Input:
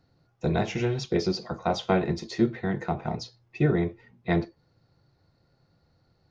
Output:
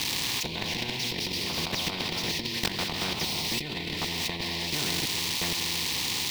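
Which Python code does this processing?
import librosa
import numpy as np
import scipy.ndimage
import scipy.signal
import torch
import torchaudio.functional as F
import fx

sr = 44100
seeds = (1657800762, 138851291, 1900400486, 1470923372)

p1 = x + 0.5 * 10.0 ** (-25.0 / 20.0) * np.diff(np.sign(x), prepend=np.sign(x[:1]))
p2 = scipy.signal.sosfilt(scipy.signal.butter(2, 66.0, 'highpass', fs=sr, output='sos'), p1)
p3 = fx.low_shelf(p2, sr, hz=160.0, db=7.0)
p4 = fx.rev_gated(p3, sr, seeds[0], gate_ms=350, shape='flat', drr_db=3.5)
p5 = 10.0 ** (-19.5 / 20.0) * np.tanh(p4 / 10.0 ** (-19.5 / 20.0))
p6 = p4 + (p5 * 10.0 ** (-9.0 / 20.0))
p7 = fx.level_steps(p6, sr, step_db=21)
p8 = p7 + 10.0 ** (-13.0 / 20.0) * np.pad(p7, (int(1121 * sr / 1000.0), 0))[:len(p7)]
p9 = fx.over_compress(p8, sr, threshold_db=-28.0, ratio=-0.5)
p10 = fx.curve_eq(p9, sr, hz=(110.0, 250.0, 630.0, 980.0, 1400.0, 2300.0, 3900.0, 6400.0, 9800.0), db=(0, 7, -20, -5, -25, 1, 8, -17, -23))
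y = fx.spectral_comp(p10, sr, ratio=4.0)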